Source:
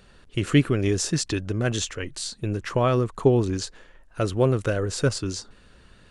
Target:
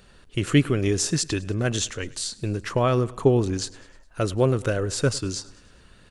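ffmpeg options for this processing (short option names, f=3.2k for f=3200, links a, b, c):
-af "highshelf=f=6.4k:g=4.5,aecho=1:1:103|206|309|412:0.0794|0.0429|0.0232|0.0125"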